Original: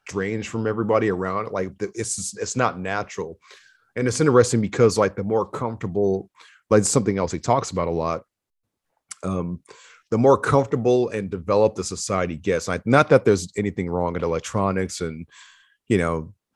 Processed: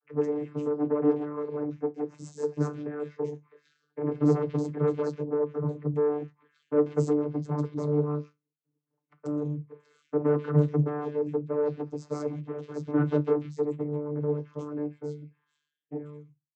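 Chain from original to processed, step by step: fade out at the end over 3.80 s; resonant low shelf 490 Hz +6.5 dB, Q 3; hum notches 60/120/180/240 Hz; in parallel at -2.5 dB: compression, threshold -24 dBFS, peak gain reduction 19.5 dB; on the sum: valve stage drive 12 dB, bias 0.7; 12.25–12.75 s: hard clipper -24.5 dBFS, distortion -19 dB; flange 0.18 Hz, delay 7.1 ms, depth 5.3 ms, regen +64%; vocoder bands 32, saw 148 Hz; bands offset in time lows, highs 140 ms, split 2.3 kHz; trim -3.5 dB

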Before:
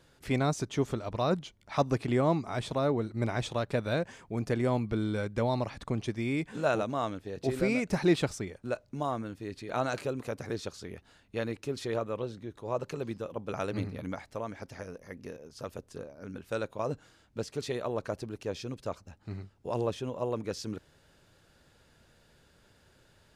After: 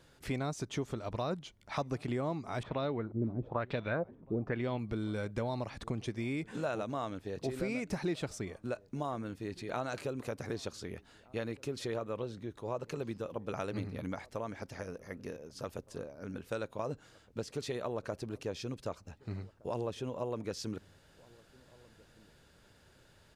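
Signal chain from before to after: compression 3:1, threshold -34 dBFS, peak gain reduction 11.5 dB; 2.63–4.79 s: LFO low-pass sine 1.1 Hz 260–3600 Hz; echo from a far wall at 260 m, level -24 dB

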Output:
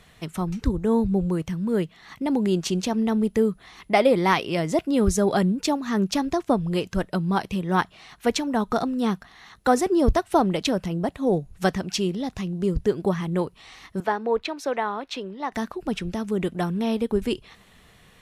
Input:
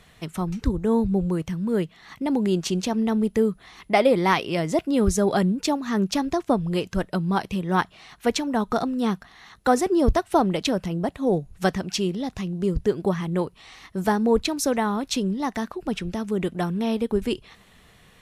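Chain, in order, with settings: 14.00–15.52 s: three-band isolator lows -17 dB, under 370 Hz, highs -18 dB, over 3.8 kHz

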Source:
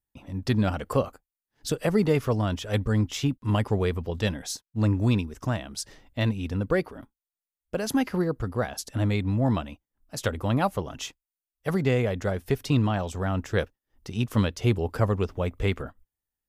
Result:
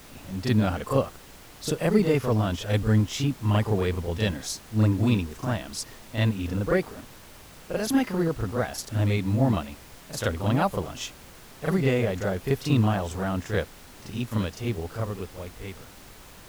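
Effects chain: fade out at the end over 3.53 s; on a send: reverse echo 37 ms -6 dB; on the sum: added noise pink -47 dBFS

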